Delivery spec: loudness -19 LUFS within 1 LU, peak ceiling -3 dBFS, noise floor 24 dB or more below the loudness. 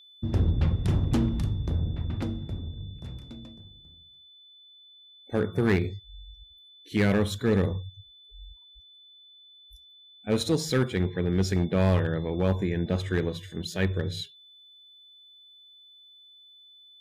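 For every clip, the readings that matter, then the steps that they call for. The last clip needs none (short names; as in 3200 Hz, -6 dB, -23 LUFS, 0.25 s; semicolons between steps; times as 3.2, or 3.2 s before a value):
clipped 0.7%; flat tops at -16.5 dBFS; steady tone 3500 Hz; tone level -51 dBFS; loudness -27.5 LUFS; peak -16.5 dBFS; loudness target -19.0 LUFS
-> clip repair -16.5 dBFS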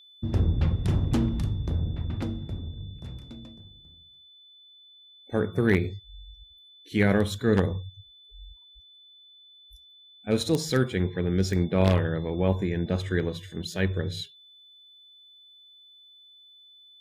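clipped 0.0%; steady tone 3500 Hz; tone level -51 dBFS
-> notch 3500 Hz, Q 30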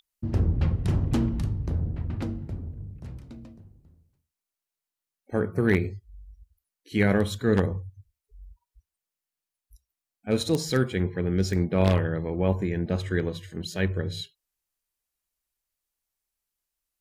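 steady tone none; loudness -27.0 LUFS; peak -7.5 dBFS; loudness target -19.0 LUFS
-> gain +8 dB; limiter -3 dBFS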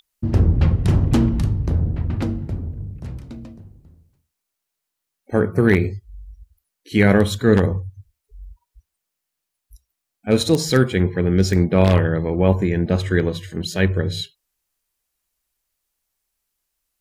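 loudness -19.0 LUFS; peak -3.0 dBFS; noise floor -81 dBFS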